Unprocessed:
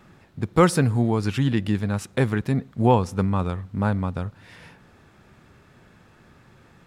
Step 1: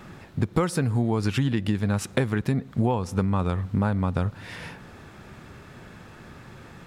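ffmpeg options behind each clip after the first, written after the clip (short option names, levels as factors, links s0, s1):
-af "acompressor=threshold=0.0398:ratio=10,volume=2.51"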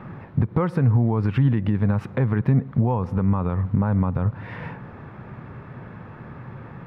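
-af "equalizer=f=125:t=o:w=1:g=10,equalizer=f=250:t=o:w=1:g=5,equalizer=f=500:t=o:w=1:g=8,equalizer=f=1000:t=o:w=1:g=11,equalizer=f=2000:t=o:w=1:g=6,equalizer=f=8000:t=o:w=1:g=-10,alimiter=limit=0.376:level=0:latency=1:release=99,bass=f=250:g=6,treble=f=4000:g=-11,volume=0.473"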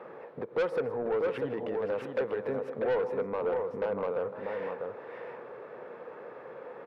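-af "highpass=f=480:t=q:w=5.7,aecho=1:1:157|508|643:0.15|0.141|0.501,asoftclip=type=tanh:threshold=0.141,volume=0.447"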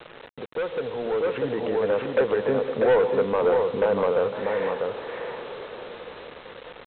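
-af "dynaudnorm=f=260:g=11:m=2.99,aresample=8000,acrusher=bits=6:mix=0:aa=0.000001,aresample=44100"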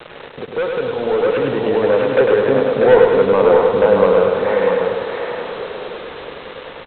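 -af "aecho=1:1:102|204|306|408|510|612|714|816:0.631|0.353|0.198|0.111|0.0621|0.0347|0.0195|0.0109,volume=2.37"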